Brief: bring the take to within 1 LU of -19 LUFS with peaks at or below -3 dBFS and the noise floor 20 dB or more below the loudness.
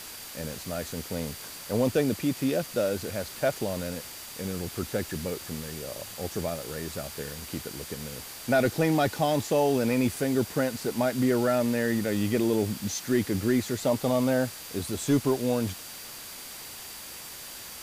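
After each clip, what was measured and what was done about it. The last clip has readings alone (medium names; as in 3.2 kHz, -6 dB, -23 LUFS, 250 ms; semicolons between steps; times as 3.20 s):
steady tone 4.7 kHz; tone level -50 dBFS; noise floor -42 dBFS; noise floor target -49 dBFS; loudness -28.5 LUFS; peak level -13.0 dBFS; loudness target -19.0 LUFS
-> band-stop 4.7 kHz, Q 30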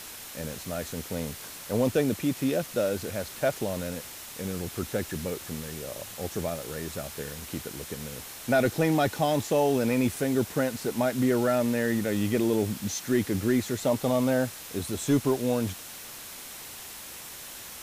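steady tone not found; noise floor -43 dBFS; noise floor target -49 dBFS
-> noise reduction 6 dB, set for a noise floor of -43 dBFS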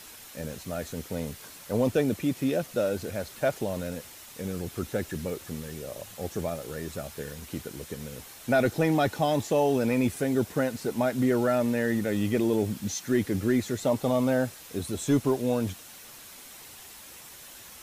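noise floor -47 dBFS; noise floor target -49 dBFS
-> noise reduction 6 dB, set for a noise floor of -47 dBFS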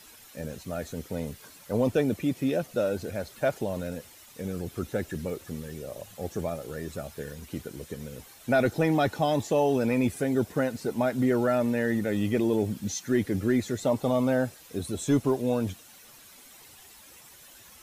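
noise floor -52 dBFS; loudness -28.5 LUFS; peak level -13.5 dBFS; loudness target -19.0 LUFS
-> trim +9.5 dB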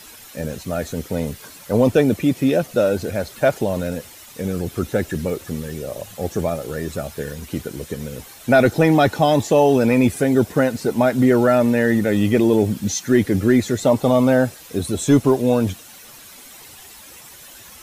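loudness -19.0 LUFS; peak level -4.0 dBFS; noise floor -42 dBFS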